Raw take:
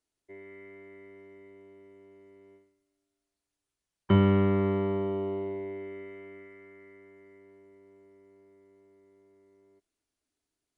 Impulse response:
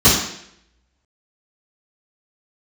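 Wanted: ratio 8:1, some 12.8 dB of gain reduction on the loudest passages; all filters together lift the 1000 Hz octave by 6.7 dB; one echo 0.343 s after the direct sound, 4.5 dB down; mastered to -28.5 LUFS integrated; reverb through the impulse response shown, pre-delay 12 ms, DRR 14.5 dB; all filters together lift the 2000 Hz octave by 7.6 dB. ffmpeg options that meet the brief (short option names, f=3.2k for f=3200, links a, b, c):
-filter_complex "[0:a]equalizer=f=1k:t=o:g=6,equalizer=f=2k:t=o:g=7,acompressor=threshold=-29dB:ratio=8,aecho=1:1:343:0.596,asplit=2[a][b];[1:a]atrim=start_sample=2205,adelay=12[c];[b][c]afir=irnorm=-1:irlink=0,volume=-39dB[d];[a][d]amix=inputs=2:normalize=0,volume=6.5dB"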